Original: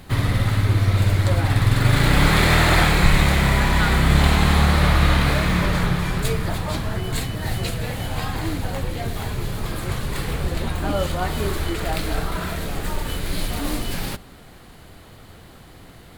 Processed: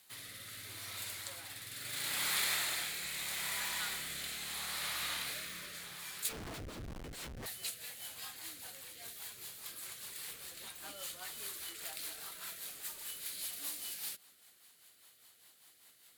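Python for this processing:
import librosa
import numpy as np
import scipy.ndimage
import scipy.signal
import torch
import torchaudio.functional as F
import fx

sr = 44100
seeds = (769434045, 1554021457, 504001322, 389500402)

y = np.diff(x, prepend=0.0)
y = fx.schmitt(y, sr, flips_db=-35.0, at=(6.29, 7.46))
y = fx.rotary_switch(y, sr, hz=0.75, then_hz=5.0, switch_at_s=6.46)
y = F.gain(torch.from_numpy(y), -4.5).numpy()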